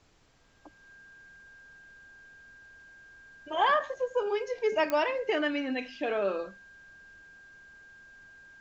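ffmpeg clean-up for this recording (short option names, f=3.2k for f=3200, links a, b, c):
-af "adeclick=t=4,bandreject=f=1.6k:w=30,agate=range=-21dB:threshold=-46dB"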